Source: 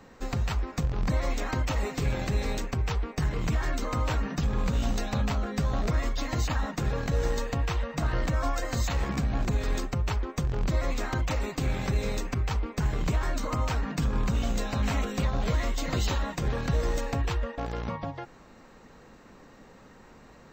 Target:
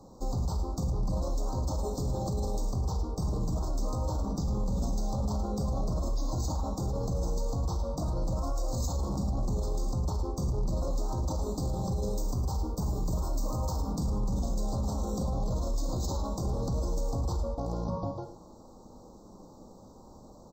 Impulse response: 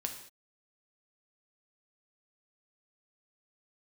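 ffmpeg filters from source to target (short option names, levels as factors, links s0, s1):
-filter_complex "[0:a]asettb=1/sr,asplit=3[s0][s1][s2];[s0]atrim=end=12.174[s3];[s1]atrim=start=12.17:end=13.86,asetpts=PTS-STARTPTS,afade=t=in:d=0.004:c=qsin,afade=t=out:st=1.686:d=0.004:c=qsin,highshelf=f=12000:g=11.5[s4];[s2]atrim=start=13.856[s5];[s3][s4]acrossfade=d=0.004:c1=hsin:c2=qsin[s6];[s6][s5]acrossfade=d=0.004:c1=qsin:c2=hsin,aecho=1:1:109:0.224[s7];[1:a]atrim=start_sample=2205,atrim=end_sample=3969,asetrate=34839,aresample=44100[s8];[s7][s8]afir=irnorm=-1:irlink=0,alimiter=limit=0.0708:level=0:latency=1:release=20,asuperstop=centerf=2200:order=8:qfactor=0.64"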